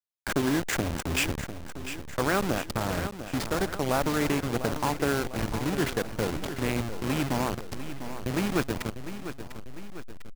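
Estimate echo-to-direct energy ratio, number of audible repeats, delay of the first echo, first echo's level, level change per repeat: -9.5 dB, 3, 699 ms, -11.0 dB, -5.5 dB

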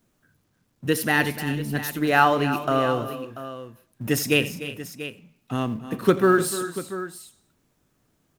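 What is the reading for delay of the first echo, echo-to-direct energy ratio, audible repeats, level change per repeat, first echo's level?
85 ms, -9.5 dB, 4, no regular repeats, -18.5 dB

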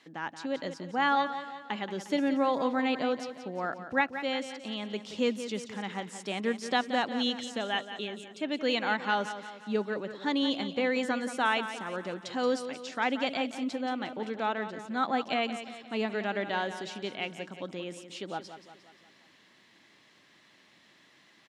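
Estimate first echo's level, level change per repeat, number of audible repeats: -11.0 dB, -6.0 dB, 4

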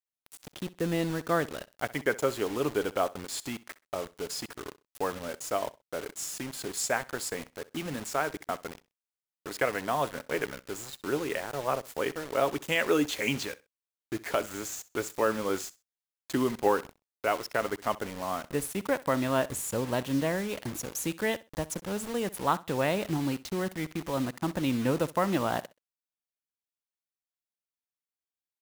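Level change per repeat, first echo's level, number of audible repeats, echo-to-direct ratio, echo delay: -13.5 dB, -19.5 dB, 2, -19.5 dB, 64 ms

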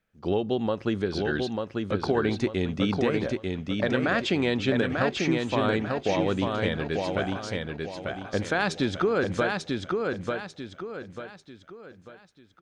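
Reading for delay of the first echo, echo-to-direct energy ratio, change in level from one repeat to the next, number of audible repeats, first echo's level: 893 ms, -3.0 dB, -8.5 dB, 4, -3.5 dB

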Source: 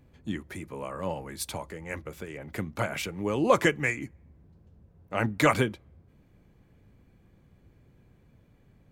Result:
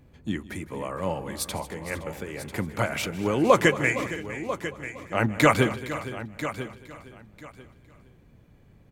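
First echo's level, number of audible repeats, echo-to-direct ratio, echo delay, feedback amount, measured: -18.5 dB, 10, -8.5 dB, 157 ms, no regular repeats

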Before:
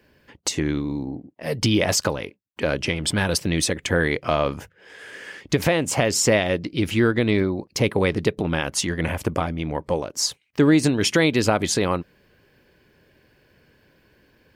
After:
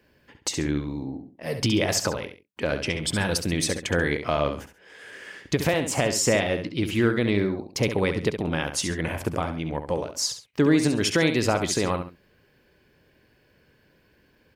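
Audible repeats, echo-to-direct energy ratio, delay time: 2, -8.0 dB, 68 ms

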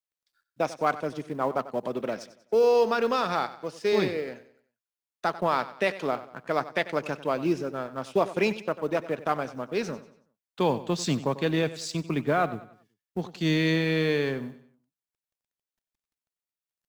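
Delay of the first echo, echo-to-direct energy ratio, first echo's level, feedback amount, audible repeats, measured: 94 ms, -14.5 dB, -15.5 dB, 40%, 3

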